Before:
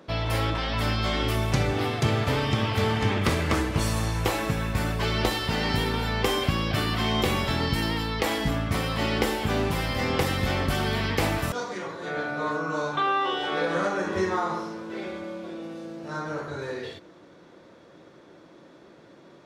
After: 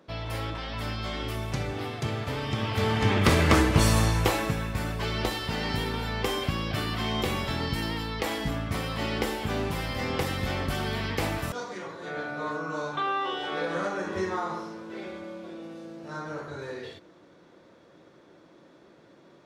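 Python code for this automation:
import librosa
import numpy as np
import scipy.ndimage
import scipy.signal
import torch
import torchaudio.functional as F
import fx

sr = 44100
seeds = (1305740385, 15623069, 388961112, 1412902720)

y = fx.gain(x, sr, db=fx.line((2.34, -7.0), (3.42, 4.5), (3.99, 4.5), (4.72, -4.0)))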